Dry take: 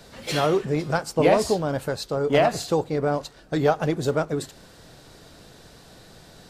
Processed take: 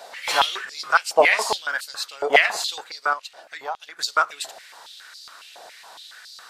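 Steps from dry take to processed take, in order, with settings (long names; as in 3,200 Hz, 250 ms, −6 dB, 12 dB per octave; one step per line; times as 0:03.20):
0:03.13–0:03.99: downward compressor 3 to 1, threshold −35 dBFS, peak gain reduction 15 dB
high-pass on a step sequencer 7.2 Hz 710–4,500 Hz
level +4 dB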